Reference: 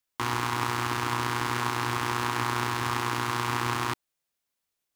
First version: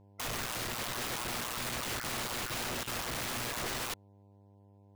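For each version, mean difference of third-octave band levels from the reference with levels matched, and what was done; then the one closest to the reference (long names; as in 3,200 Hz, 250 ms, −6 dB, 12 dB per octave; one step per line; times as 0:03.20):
6.0 dB: time-frequency cells dropped at random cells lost 25%
low-pass filter 1,700 Hz 6 dB per octave
wrap-around overflow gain 34 dB
hum with harmonics 100 Hz, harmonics 10, −62 dBFS −6 dB per octave
level +2.5 dB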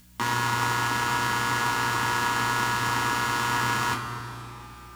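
2.5 dB: upward compression, threshold −45 dBFS
mains hum 60 Hz, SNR 26 dB
on a send: feedback echo with a low-pass in the loop 134 ms, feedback 77%, low-pass 1,300 Hz, level −11 dB
on the sum: coupled-rooms reverb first 0.22 s, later 4.1 s, from −20 dB, DRR −1 dB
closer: second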